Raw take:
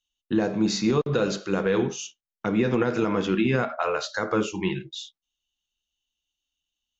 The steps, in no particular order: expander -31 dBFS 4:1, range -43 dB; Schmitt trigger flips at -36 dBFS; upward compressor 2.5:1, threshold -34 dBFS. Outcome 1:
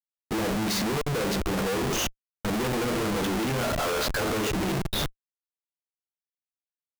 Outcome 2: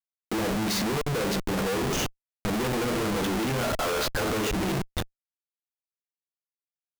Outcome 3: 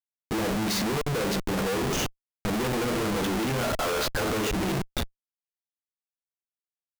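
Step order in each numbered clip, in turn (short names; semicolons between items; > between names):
Schmitt trigger > expander > upward compressor; expander > Schmitt trigger > upward compressor; expander > upward compressor > Schmitt trigger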